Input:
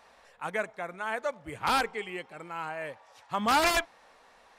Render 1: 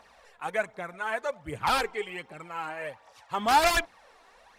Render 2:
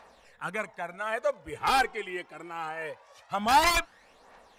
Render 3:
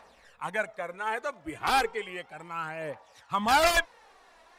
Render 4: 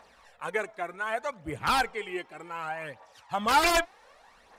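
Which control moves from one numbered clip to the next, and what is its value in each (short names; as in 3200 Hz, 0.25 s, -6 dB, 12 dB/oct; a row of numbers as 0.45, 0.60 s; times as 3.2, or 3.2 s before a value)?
phaser, rate: 1.3, 0.23, 0.34, 0.66 Hz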